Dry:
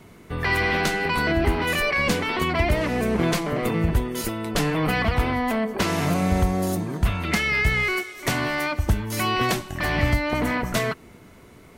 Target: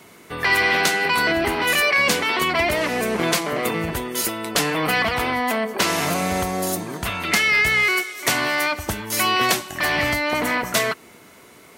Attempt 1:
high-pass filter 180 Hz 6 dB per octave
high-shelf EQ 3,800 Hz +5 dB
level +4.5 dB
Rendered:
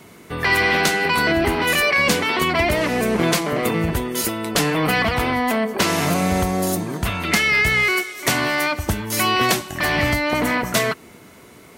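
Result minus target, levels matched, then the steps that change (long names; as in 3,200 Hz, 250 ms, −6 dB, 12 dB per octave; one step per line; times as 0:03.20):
250 Hz band +3.5 dB
change: high-pass filter 470 Hz 6 dB per octave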